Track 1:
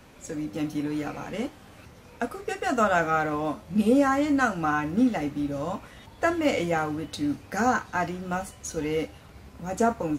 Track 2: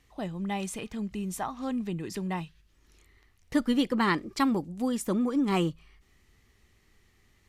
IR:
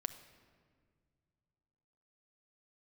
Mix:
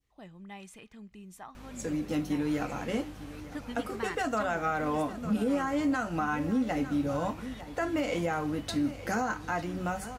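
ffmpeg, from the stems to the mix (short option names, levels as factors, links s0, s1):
-filter_complex "[0:a]alimiter=limit=0.15:level=0:latency=1:release=229,aeval=exprs='val(0)+0.00355*(sin(2*PI*50*n/s)+sin(2*PI*2*50*n/s)/2+sin(2*PI*3*50*n/s)/3+sin(2*PI*4*50*n/s)/4+sin(2*PI*5*50*n/s)/5)':c=same,adelay=1550,volume=1,asplit=2[s0][s1];[s1]volume=0.158[s2];[1:a]adynamicequalizer=threshold=0.00447:dfrequency=1900:dqfactor=0.88:tfrequency=1900:tqfactor=0.88:attack=5:release=100:ratio=0.375:range=3:mode=boostabove:tftype=bell,volume=0.168,asplit=2[s3][s4];[s4]volume=0.106[s5];[2:a]atrim=start_sample=2205[s6];[s5][s6]afir=irnorm=-1:irlink=0[s7];[s2]aecho=0:1:903:1[s8];[s0][s3][s7][s8]amix=inputs=4:normalize=0,alimiter=limit=0.0944:level=0:latency=1:release=183"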